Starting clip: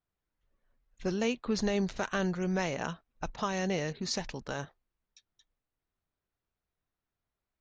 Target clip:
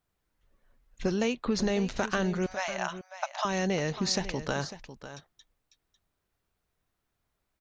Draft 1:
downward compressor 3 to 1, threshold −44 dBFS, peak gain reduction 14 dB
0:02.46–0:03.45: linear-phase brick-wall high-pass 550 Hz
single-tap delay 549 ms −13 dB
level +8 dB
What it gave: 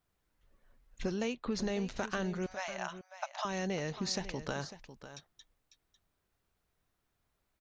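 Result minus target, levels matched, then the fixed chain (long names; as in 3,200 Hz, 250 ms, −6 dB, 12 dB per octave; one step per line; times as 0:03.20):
downward compressor: peak gain reduction +6.5 dB
downward compressor 3 to 1, threshold −34 dBFS, peak gain reduction 7 dB
0:02.46–0:03.45: linear-phase brick-wall high-pass 550 Hz
single-tap delay 549 ms −13 dB
level +8 dB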